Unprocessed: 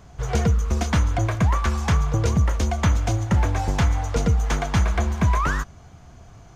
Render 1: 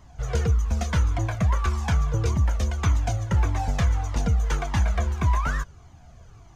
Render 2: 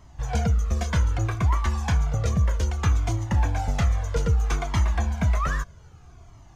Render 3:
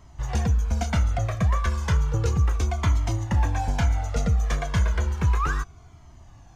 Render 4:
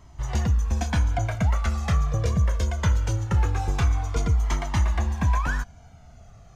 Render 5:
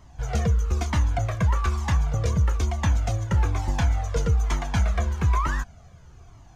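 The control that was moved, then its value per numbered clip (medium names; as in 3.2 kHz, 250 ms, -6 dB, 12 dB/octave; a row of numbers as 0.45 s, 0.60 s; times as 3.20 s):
Shepard-style flanger, rate: 1.7 Hz, 0.63 Hz, 0.33 Hz, 0.22 Hz, 1.1 Hz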